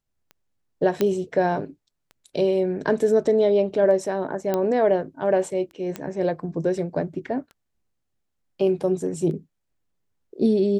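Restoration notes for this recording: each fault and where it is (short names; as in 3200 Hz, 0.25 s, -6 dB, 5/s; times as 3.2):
tick 33 1/3 rpm -29 dBFS
1.01 pop -9 dBFS
4.54 pop -11 dBFS
5.96 pop -15 dBFS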